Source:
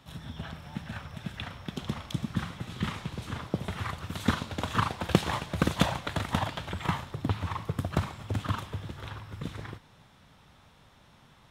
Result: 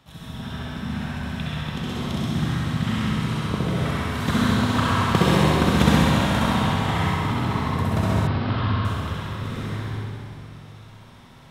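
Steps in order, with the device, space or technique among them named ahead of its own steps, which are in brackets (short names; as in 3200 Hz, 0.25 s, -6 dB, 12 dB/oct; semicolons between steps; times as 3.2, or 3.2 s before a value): tunnel (flutter echo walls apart 11.2 m, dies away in 1.3 s; reverb RT60 2.6 s, pre-delay 58 ms, DRR -5.5 dB); 8.27–8.85 elliptic low-pass 4900 Hz, stop band 40 dB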